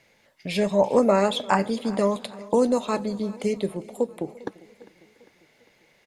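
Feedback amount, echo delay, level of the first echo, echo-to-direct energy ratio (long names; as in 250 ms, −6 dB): repeats not evenly spaced, 345 ms, −23.0 dB, −18.0 dB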